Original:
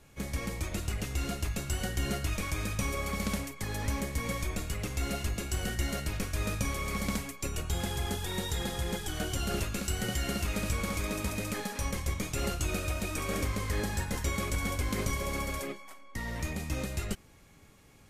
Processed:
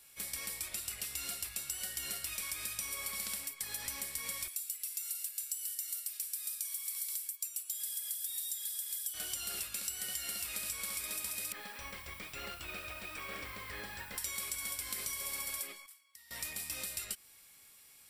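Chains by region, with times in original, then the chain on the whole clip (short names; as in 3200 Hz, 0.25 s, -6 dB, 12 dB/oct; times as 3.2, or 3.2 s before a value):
4.48–9.14 differentiator + comb 3 ms, depth 38%
11.52–14.18 LPF 2400 Hz + requantised 10-bit, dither none
15.86–16.31 passive tone stack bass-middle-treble 5-5-5 + compressor 4:1, threshold -57 dBFS
whole clip: pre-emphasis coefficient 0.97; notch 6500 Hz, Q 5.1; compressor, threshold -44 dBFS; gain +8.5 dB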